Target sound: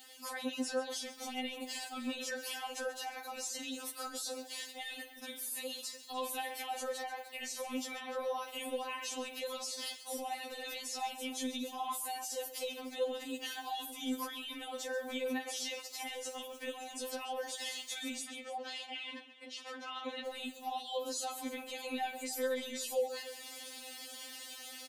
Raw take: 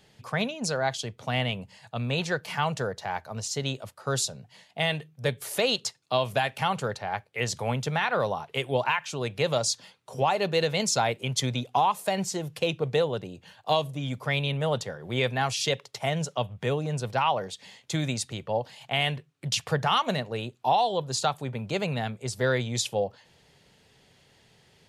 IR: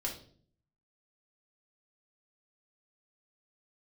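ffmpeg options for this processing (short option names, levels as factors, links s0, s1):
-filter_complex "[0:a]aemphasis=mode=production:type=bsi,dynaudnorm=f=230:g=3:m=2.51,alimiter=level_in=2.99:limit=0.0631:level=0:latency=1:release=59,volume=0.335,asettb=1/sr,asplit=3[s0][s1][s2];[s0]atrim=end=18.264[s3];[s1]atrim=start=18.26:end=20.26,asetpts=PTS-STARTPTS,afade=t=in:d=0.004:c=qsin,afade=t=out:st=1.996:d=0.004:c=qsin,highpass=230,lowpass=3900[s4];[s2]atrim=start=20.256[s5];[s3][s4]acrossfade=d=0.004:c1=hsin:c2=qsin[s6];[s6][s5]acrossfade=d=0.004:c1=qsin:c2=hsin,aecho=1:1:51|135|298:0.119|0.188|0.15,afftfilt=real='re*3.46*eq(mod(b,12),0)':imag='im*3.46*eq(mod(b,12),0)':win_size=2048:overlap=0.75,volume=1.68"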